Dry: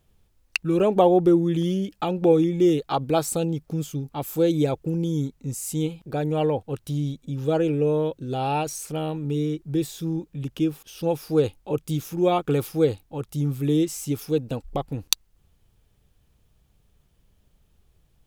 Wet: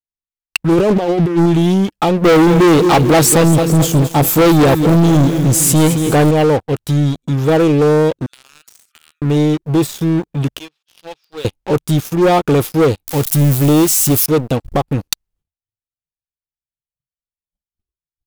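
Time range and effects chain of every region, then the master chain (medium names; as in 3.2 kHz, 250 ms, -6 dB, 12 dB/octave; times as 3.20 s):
0.72–1.46 s: compressor with a negative ratio -22 dBFS, ratio -0.5 + tape noise reduction on one side only decoder only
2.25–6.31 s: waveshaping leveller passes 2 + bit-crushed delay 219 ms, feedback 55%, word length 7-bit, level -11 dB
8.26–9.22 s: Chebyshev high-pass 1.2 kHz, order 8 + compression 8:1, threshold -42 dBFS
10.59–11.45 s: low-pass 4.2 kHz 24 dB/octave + differentiator + waveshaping leveller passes 2
13.07–14.26 s: zero-crossing glitches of -24 dBFS + bass shelf 230 Hz +4 dB
whole clip: gate -56 dBFS, range -14 dB; spectral noise reduction 15 dB; waveshaping leveller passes 5; trim -4.5 dB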